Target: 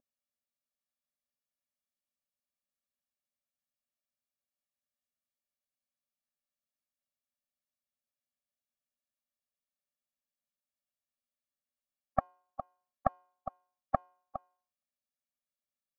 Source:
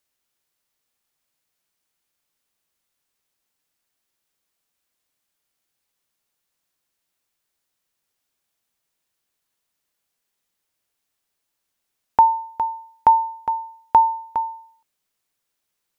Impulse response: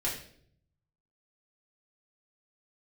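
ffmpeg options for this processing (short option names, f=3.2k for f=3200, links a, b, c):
-af "aeval=exprs='val(0)+0.00562*sin(2*PI*410*n/s)':c=same,afftdn=nr=20:nf=-35,afftfilt=real='re*eq(mod(floor(b*sr/1024/270),2),0)':imag='im*eq(mod(floor(b*sr/1024/270),2),0)':win_size=1024:overlap=0.75,volume=2.5dB"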